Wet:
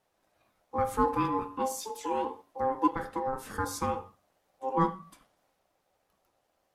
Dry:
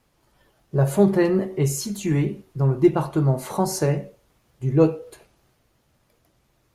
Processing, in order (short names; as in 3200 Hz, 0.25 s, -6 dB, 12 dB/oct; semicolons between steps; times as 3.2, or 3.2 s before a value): 2.87–3.33 compressor, threshold -19 dBFS, peak gain reduction 4.5 dB; ring modulator 660 Hz; gain -7 dB